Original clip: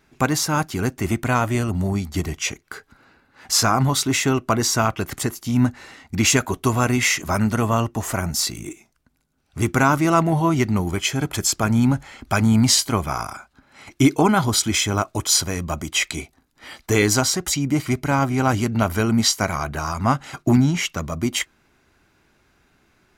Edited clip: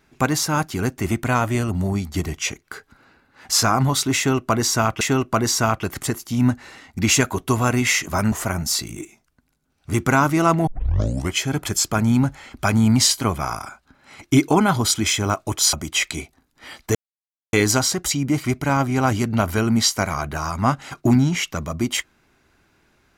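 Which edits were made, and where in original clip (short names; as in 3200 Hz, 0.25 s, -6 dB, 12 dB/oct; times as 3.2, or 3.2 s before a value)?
4.17–5.01 loop, 2 plays
7.48–8 cut
10.35 tape start 0.66 s
15.41–15.73 cut
16.95 insert silence 0.58 s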